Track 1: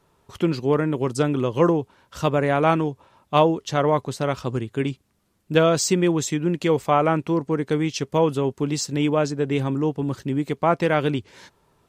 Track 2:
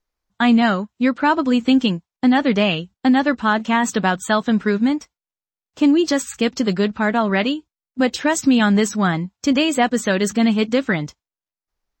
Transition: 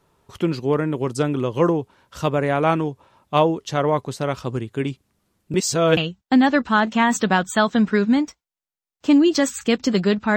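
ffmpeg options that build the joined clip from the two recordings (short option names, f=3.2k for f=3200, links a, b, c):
-filter_complex "[0:a]apad=whole_dur=10.36,atrim=end=10.36,asplit=2[a][b];[a]atrim=end=5.542[c];[b]atrim=start=5.538:end=5.972,asetpts=PTS-STARTPTS,areverse[d];[1:a]atrim=start=2.698:end=7.09[e];[c][d]acrossfade=d=0.004:c1=hsin:c2=hsin[f];[f][e]acrossfade=d=0.004:c1=hsin:c2=hsin"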